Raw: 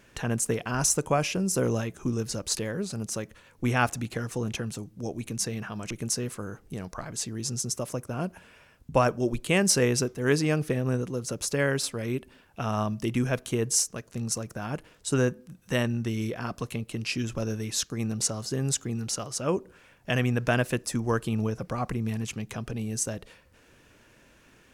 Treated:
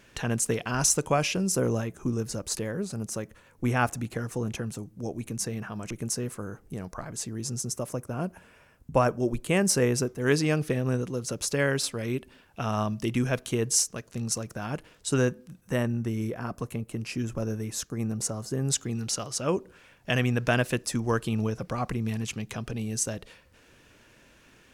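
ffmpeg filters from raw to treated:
ffmpeg -i in.wav -af "asetnsamples=nb_out_samples=441:pad=0,asendcmd='1.55 equalizer g -5.5;10.2 equalizer g 1.5;15.61 equalizer g -9.5;18.7 equalizer g 2.5',equalizer=frequency=3700:width_type=o:width=1.6:gain=3" out.wav

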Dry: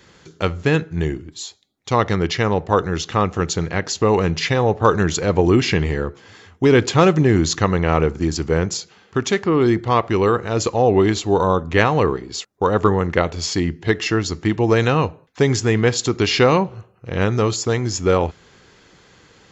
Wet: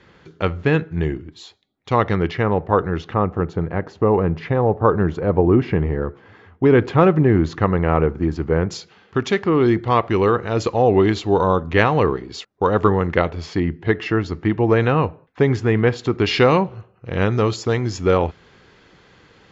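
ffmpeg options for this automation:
ffmpeg -i in.wav -af "asetnsamples=nb_out_samples=441:pad=0,asendcmd='2.31 lowpass f 1900;3.14 lowpass f 1200;6.02 lowpass f 1800;8.7 lowpass f 3900;13.29 lowpass f 2300;16.26 lowpass f 4000',lowpass=2900" out.wav

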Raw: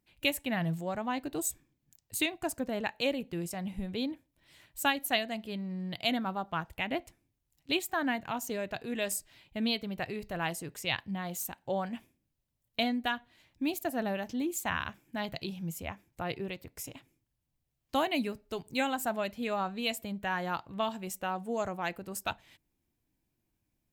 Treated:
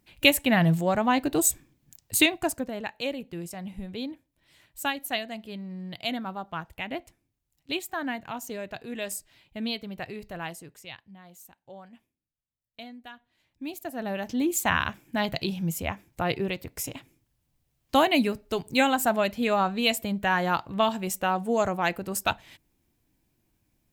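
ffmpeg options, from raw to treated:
ffmpeg -i in.wav -af "volume=32dB,afade=type=out:start_time=2.2:duration=0.52:silence=0.281838,afade=type=out:start_time=10.27:duration=0.71:silence=0.237137,afade=type=in:start_time=13.13:duration=0.85:silence=0.266073,afade=type=in:start_time=13.98:duration=0.59:silence=0.316228" out.wav

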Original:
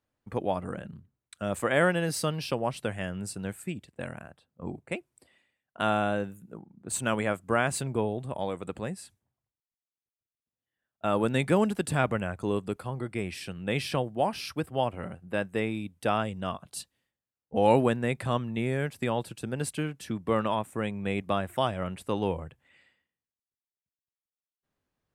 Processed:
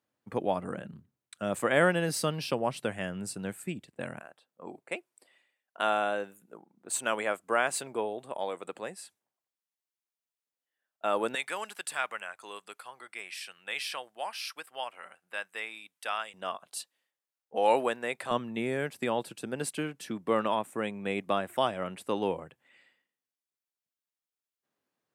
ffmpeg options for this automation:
ffmpeg -i in.wav -af "asetnsamples=nb_out_samples=441:pad=0,asendcmd='4.2 highpass f 430;11.35 highpass f 1200;16.34 highpass f 510;18.31 highpass f 230',highpass=150" out.wav

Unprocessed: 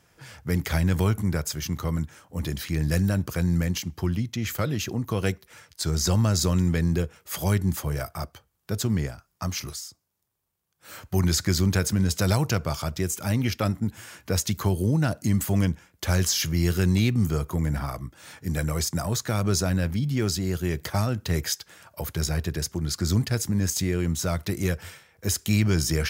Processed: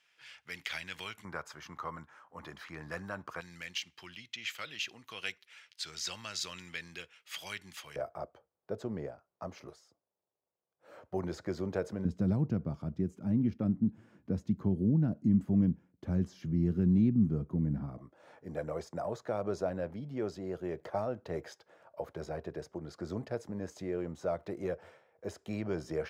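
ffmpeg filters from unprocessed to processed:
ffmpeg -i in.wav -af "asetnsamples=nb_out_samples=441:pad=0,asendcmd='1.25 bandpass f 1100;3.41 bandpass f 2800;7.96 bandpass f 550;12.05 bandpass f 220;17.98 bandpass f 580',bandpass=frequency=2800:width_type=q:width=2:csg=0" out.wav

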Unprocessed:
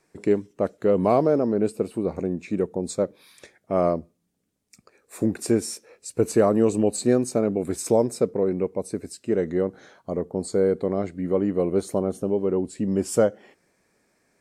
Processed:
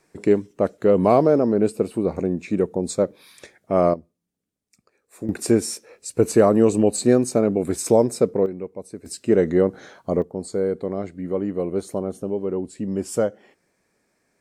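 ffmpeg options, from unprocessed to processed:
ffmpeg -i in.wav -af "asetnsamples=nb_out_samples=441:pad=0,asendcmd='3.94 volume volume -7.5dB;5.29 volume volume 3.5dB;8.46 volume volume -6.5dB;9.06 volume volume 6dB;10.22 volume volume -2dB',volume=3.5dB" out.wav

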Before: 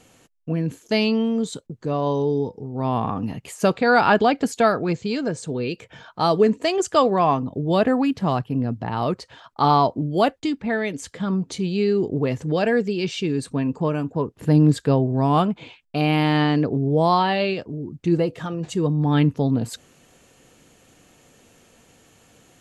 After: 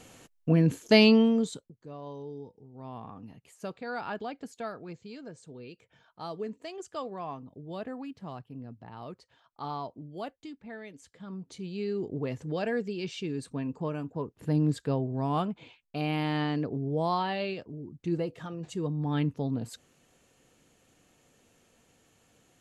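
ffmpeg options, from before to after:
ffmpeg -i in.wav -af "volume=10.5dB,afade=type=out:start_time=1.1:duration=0.43:silence=0.354813,afade=type=out:start_time=1.53:duration=0.2:silence=0.251189,afade=type=in:start_time=11.2:duration=0.97:silence=0.354813" out.wav

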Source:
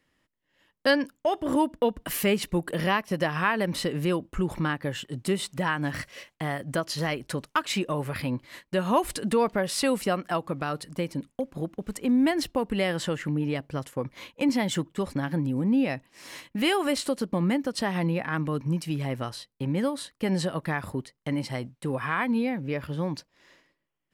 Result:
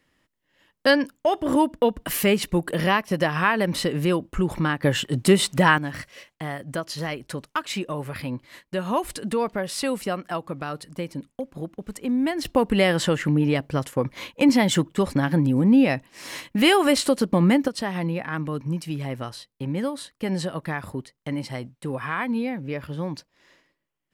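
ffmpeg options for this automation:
ffmpeg -i in.wav -af "asetnsamples=nb_out_samples=441:pad=0,asendcmd='4.83 volume volume 10dB;5.78 volume volume -1dB;12.45 volume volume 7dB;17.68 volume volume 0dB',volume=4dB" out.wav

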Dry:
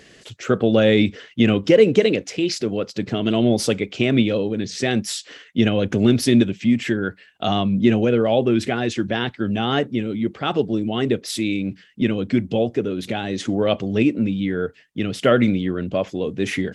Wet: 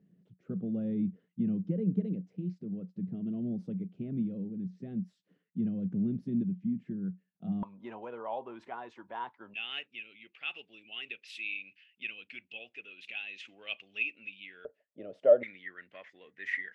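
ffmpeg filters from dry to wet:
ffmpeg -i in.wav -af "asetnsamples=nb_out_samples=441:pad=0,asendcmd='7.63 bandpass f 960;9.54 bandpass f 2600;14.65 bandpass f 590;15.43 bandpass f 1900',bandpass=frequency=180:width_type=q:width=10:csg=0" out.wav

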